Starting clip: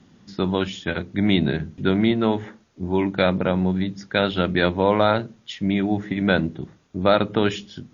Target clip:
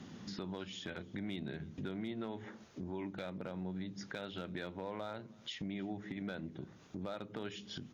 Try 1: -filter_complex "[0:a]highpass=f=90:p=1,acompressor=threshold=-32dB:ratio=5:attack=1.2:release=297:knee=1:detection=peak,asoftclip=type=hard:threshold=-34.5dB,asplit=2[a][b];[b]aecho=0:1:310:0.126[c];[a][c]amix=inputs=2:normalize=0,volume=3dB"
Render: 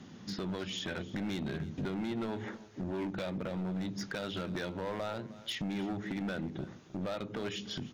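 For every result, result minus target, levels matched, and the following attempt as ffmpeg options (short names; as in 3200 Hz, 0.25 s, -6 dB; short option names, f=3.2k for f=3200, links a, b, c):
compressor: peak gain reduction -8 dB; echo-to-direct +7.5 dB
-filter_complex "[0:a]highpass=f=90:p=1,acompressor=threshold=-42dB:ratio=5:attack=1.2:release=297:knee=1:detection=peak,asoftclip=type=hard:threshold=-34.5dB,asplit=2[a][b];[b]aecho=0:1:310:0.126[c];[a][c]amix=inputs=2:normalize=0,volume=3dB"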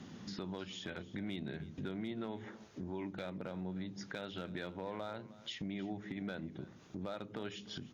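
echo-to-direct +7.5 dB
-filter_complex "[0:a]highpass=f=90:p=1,acompressor=threshold=-42dB:ratio=5:attack=1.2:release=297:knee=1:detection=peak,asoftclip=type=hard:threshold=-34.5dB,asplit=2[a][b];[b]aecho=0:1:310:0.0531[c];[a][c]amix=inputs=2:normalize=0,volume=3dB"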